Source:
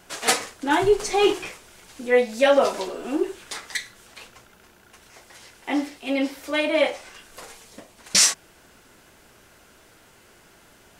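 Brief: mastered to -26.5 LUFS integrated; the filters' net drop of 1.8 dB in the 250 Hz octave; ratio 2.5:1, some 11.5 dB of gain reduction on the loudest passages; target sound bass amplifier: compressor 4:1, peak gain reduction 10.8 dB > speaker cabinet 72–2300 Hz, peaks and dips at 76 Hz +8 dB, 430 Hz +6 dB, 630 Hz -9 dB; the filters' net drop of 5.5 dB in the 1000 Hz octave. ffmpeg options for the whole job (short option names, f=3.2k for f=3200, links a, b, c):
-af "equalizer=f=250:t=o:g=-3,equalizer=f=1k:t=o:g=-5,acompressor=threshold=-32dB:ratio=2.5,acompressor=threshold=-37dB:ratio=4,highpass=f=72:w=0.5412,highpass=f=72:w=1.3066,equalizer=f=76:t=q:w=4:g=8,equalizer=f=430:t=q:w=4:g=6,equalizer=f=630:t=q:w=4:g=-9,lowpass=f=2.3k:w=0.5412,lowpass=f=2.3k:w=1.3066,volume=16.5dB"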